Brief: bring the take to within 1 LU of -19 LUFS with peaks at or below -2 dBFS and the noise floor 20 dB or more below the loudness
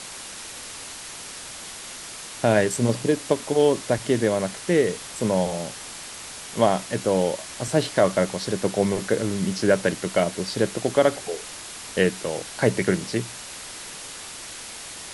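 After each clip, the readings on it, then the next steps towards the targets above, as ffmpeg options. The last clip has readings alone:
noise floor -38 dBFS; noise floor target -44 dBFS; loudness -23.5 LUFS; peak level -5.0 dBFS; loudness target -19.0 LUFS
-> -af "afftdn=nr=6:nf=-38"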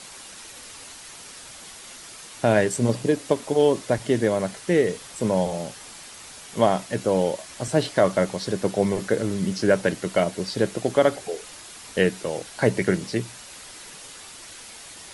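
noise floor -43 dBFS; noise floor target -44 dBFS
-> -af "afftdn=nr=6:nf=-43"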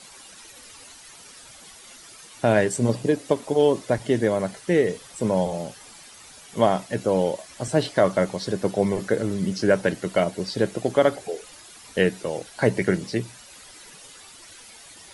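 noise floor -47 dBFS; loudness -23.5 LUFS; peak level -5.0 dBFS; loudness target -19.0 LUFS
-> -af "volume=1.68,alimiter=limit=0.794:level=0:latency=1"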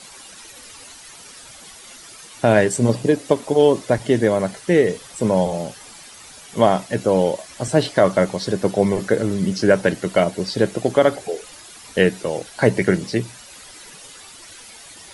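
loudness -19.5 LUFS; peak level -2.0 dBFS; noise floor -42 dBFS

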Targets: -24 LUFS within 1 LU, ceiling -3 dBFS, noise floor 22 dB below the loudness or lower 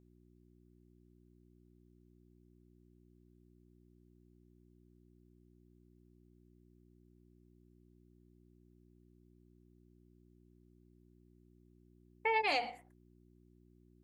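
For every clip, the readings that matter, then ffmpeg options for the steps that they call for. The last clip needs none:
hum 60 Hz; highest harmonic 360 Hz; hum level -62 dBFS; loudness -34.0 LUFS; peak level -21.5 dBFS; loudness target -24.0 LUFS
-> -af "bandreject=f=60:t=h:w=4,bandreject=f=120:t=h:w=4,bandreject=f=180:t=h:w=4,bandreject=f=240:t=h:w=4,bandreject=f=300:t=h:w=4,bandreject=f=360:t=h:w=4"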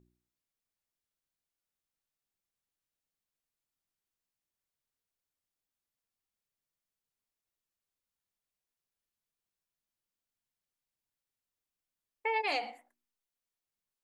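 hum not found; loudness -33.5 LUFS; peak level -21.5 dBFS; loudness target -24.0 LUFS
-> -af "volume=2.99"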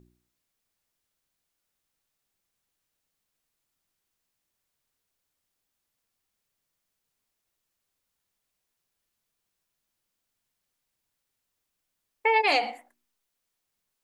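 loudness -24.0 LUFS; peak level -12.0 dBFS; noise floor -82 dBFS

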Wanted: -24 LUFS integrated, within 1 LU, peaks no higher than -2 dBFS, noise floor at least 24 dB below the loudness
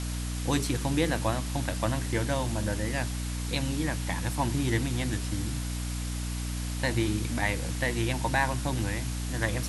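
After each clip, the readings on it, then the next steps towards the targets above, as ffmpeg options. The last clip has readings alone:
hum 60 Hz; highest harmonic 300 Hz; hum level -30 dBFS; noise floor -33 dBFS; noise floor target -54 dBFS; loudness -30.0 LUFS; peak level -12.0 dBFS; loudness target -24.0 LUFS
-> -af "bandreject=f=60:t=h:w=4,bandreject=f=120:t=h:w=4,bandreject=f=180:t=h:w=4,bandreject=f=240:t=h:w=4,bandreject=f=300:t=h:w=4"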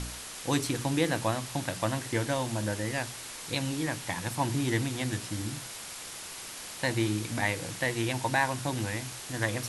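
hum not found; noise floor -42 dBFS; noise floor target -56 dBFS
-> -af "afftdn=nr=14:nf=-42"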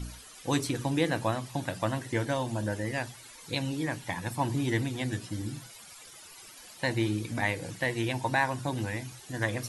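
noise floor -50 dBFS; noise floor target -56 dBFS
-> -af "afftdn=nr=6:nf=-50"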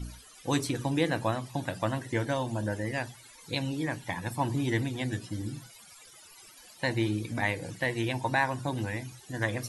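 noise floor -53 dBFS; noise floor target -56 dBFS
-> -af "afftdn=nr=6:nf=-53"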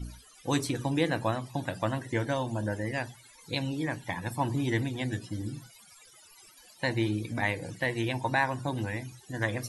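noise floor -56 dBFS; loudness -31.5 LUFS; peak level -13.5 dBFS; loudness target -24.0 LUFS
-> -af "volume=2.37"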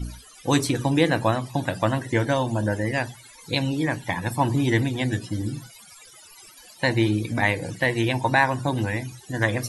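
loudness -24.0 LUFS; peak level -6.0 dBFS; noise floor -49 dBFS

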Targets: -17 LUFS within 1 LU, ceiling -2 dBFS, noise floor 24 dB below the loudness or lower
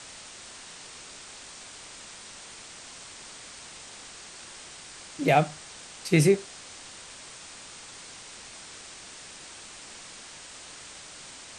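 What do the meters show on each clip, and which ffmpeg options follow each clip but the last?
noise floor -46 dBFS; noise floor target -57 dBFS; loudness -33.0 LUFS; peak level -7.5 dBFS; loudness target -17.0 LUFS
-> -af "afftdn=nr=11:nf=-46"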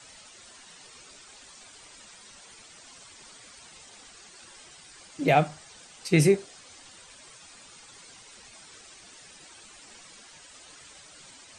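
noise floor -51 dBFS; loudness -24.5 LUFS; peak level -7.5 dBFS; loudness target -17.0 LUFS
-> -af "volume=2.37,alimiter=limit=0.794:level=0:latency=1"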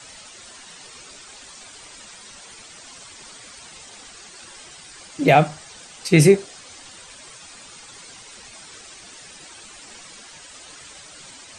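loudness -17.5 LUFS; peak level -2.0 dBFS; noise floor -44 dBFS

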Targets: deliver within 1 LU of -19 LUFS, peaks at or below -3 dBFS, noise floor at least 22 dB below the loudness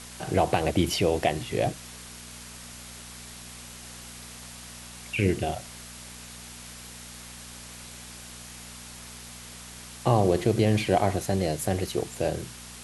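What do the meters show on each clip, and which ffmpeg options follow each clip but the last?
hum 60 Hz; highest harmonic 240 Hz; hum level -48 dBFS; noise floor -44 dBFS; noise floor target -48 dBFS; loudness -26.0 LUFS; peak level -6.5 dBFS; loudness target -19.0 LUFS
-> -af "bandreject=f=60:t=h:w=4,bandreject=f=120:t=h:w=4,bandreject=f=180:t=h:w=4,bandreject=f=240:t=h:w=4"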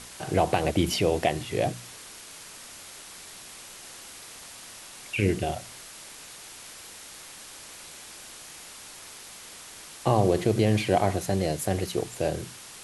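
hum not found; noise floor -45 dBFS; noise floor target -49 dBFS
-> -af "afftdn=nr=6:nf=-45"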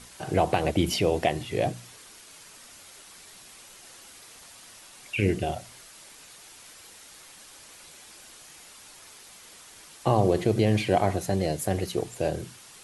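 noise floor -50 dBFS; loudness -26.5 LUFS; peak level -7.0 dBFS; loudness target -19.0 LUFS
-> -af "volume=2.37,alimiter=limit=0.708:level=0:latency=1"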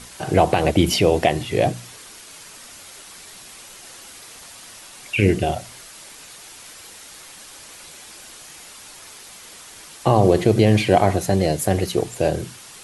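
loudness -19.0 LUFS; peak level -3.0 dBFS; noise floor -42 dBFS

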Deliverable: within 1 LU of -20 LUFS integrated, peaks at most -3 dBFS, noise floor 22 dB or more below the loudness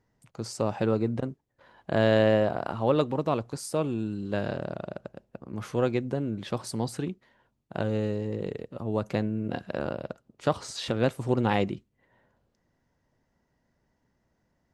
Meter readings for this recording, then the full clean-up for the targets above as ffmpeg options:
loudness -29.0 LUFS; peak level -9.0 dBFS; loudness target -20.0 LUFS
-> -af "volume=2.82,alimiter=limit=0.708:level=0:latency=1"

